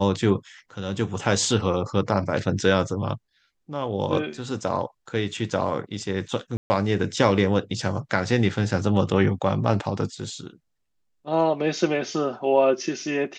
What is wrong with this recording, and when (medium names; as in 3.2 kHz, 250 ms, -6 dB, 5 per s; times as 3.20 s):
6.57–6.70 s: dropout 130 ms